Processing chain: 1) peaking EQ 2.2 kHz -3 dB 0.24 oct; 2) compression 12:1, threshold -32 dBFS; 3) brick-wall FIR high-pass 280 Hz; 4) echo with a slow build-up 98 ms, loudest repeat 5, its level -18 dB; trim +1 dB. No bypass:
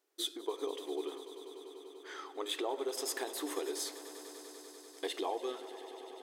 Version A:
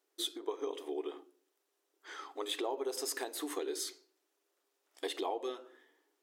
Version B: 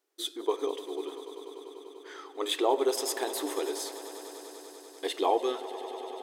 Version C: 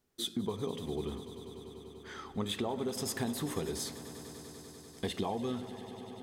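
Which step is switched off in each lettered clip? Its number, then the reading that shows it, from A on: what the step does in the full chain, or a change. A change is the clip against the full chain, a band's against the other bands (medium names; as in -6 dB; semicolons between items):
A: 4, echo-to-direct -8.5 dB to none; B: 2, mean gain reduction 4.5 dB; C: 3, 250 Hz band +7.0 dB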